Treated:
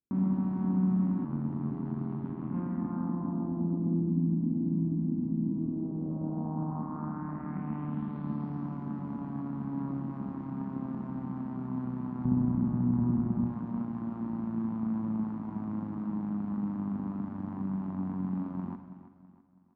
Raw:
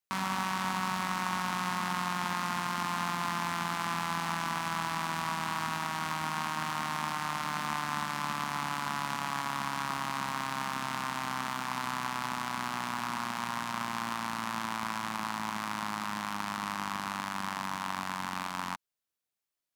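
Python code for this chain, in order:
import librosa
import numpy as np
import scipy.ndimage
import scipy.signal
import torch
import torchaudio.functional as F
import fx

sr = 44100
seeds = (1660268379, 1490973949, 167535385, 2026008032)

p1 = fx.riaa(x, sr, side='playback', at=(12.25, 13.47))
p2 = fx.rider(p1, sr, range_db=10, speed_s=0.5)
p3 = p1 + (p2 * librosa.db_to_amplitude(-2.0))
p4 = fx.filter_sweep_lowpass(p3, sr, from_hz=280.0, to_hz=8500.0, start_s=5.48, end_s=9.0, q=2.9)
p5 = fx.rev_schroeder(p4, sr, rt60_s=1.1, comb_ms=32, drr_db=7.5)
p6 = fx.filter_sweep_lowpass(p5, sr, from_hz=14000.0, to_hz=290.0, start_s=1.27, end_s=4.21, q=1.4)
p7 = fx.echo_feedback(p6, sr, ms=327, feedback_pct=42, wet_db=-13.5)
y = fx.ring_mod(p7, sr, carrier_hz=41.0, at=(1.24, 2.54))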